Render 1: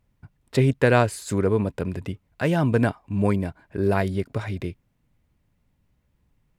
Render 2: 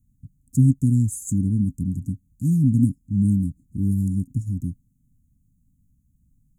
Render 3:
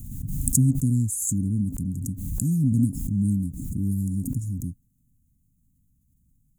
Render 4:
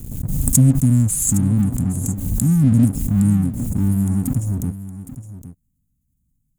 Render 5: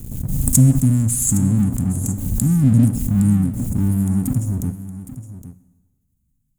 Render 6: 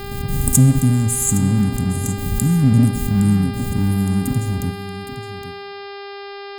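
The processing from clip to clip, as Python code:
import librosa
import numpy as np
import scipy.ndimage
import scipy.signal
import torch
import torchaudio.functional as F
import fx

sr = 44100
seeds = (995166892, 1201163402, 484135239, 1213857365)

y1 = scipy.signal.sosfilt(scipy.signal.cheby1(5, 1.0, [270.0, 6600.0], 'bandstop', fs=sr, output='sos'), x)
y1 = y1 * librosa.db_to_amplitude(5.0)
y2 = fx.high_shelf(y1, sr, hz=6500.0, db=9.5)
y2 = fx.pre_swell(y2, sr, db_per_s=37.0)
y2 = y2 * librosa.db_to_amplitude(-4.0)
y3 = fx.leveller(y2, sr, passes=2)
y3 = y3 + 10.0 ** (-13.5 / 20.0) * np.pad(y3, (int(814 * sr / 1000.0), 0))[:len(y3)]
y4 = fx.rev_plate(y3, sr, seeds[0], rt60_s=1.2, hf_ratio=0.95, predelay_ms=0, drr_db=13.5)
y5 = fx.dmg_buzz(y4, sr, base_hz=400.0, harmonics=13, level_db=-33.0, tilt_db=-5, odd_only=False)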